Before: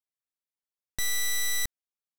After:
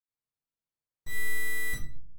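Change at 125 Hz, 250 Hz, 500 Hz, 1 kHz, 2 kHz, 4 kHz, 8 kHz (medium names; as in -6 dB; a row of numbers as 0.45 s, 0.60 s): +5.5 dB, +5.0 dB, +4.0 dB, -5.5 dB, +1.5 dB, -13.5 dB, -12.0 dB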